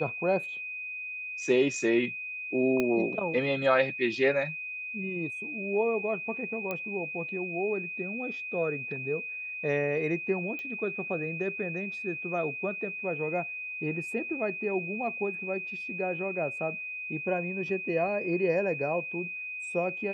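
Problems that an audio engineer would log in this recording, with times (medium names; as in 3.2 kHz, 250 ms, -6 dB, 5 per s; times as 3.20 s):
whine 2.5 kHz -35 dBFS
2.80 s: pop -15 dBFS
6.71 s: pop -19 dBFS
10.59 s: pop -26 dBFS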